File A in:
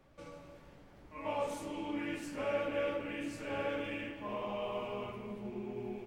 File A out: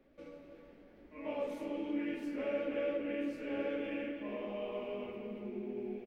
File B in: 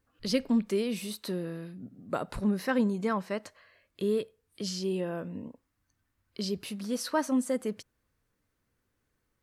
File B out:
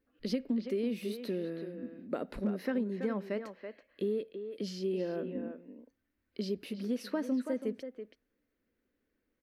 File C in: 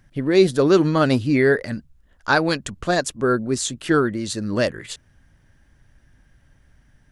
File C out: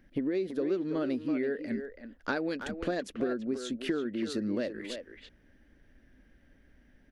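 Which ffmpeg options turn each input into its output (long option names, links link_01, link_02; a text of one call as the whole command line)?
ffmpeg -i in.wav -filter_complex "[0:a]equalizer=frequency=125:width_type=o:width=1:gain=-11,equalizer=frequency=250:width_type=o:width=1:gain=10,equalizer=frequency=500:width_type=o:width=1:gain=6,equalizer=frequency=1000:width_type=o:width=1:gain=-7,equalizer=frequency=2000:width_type=o:width=1:gain=4,equalizer=frequency=8000:width_type=o:width=1:gain=-11,acompressor=threshold=-23dB:ratio=12,asplit=2[link_01][link_02];[link_02]adelay=330,highpass=300,lowpass=3400,asoftclip=type=hard:threshold=-19.5dB,volume=-7dB[link_03];[link_01][link_03]amix=inputs=2:normalize=0,volume=-5.5dB" out.wav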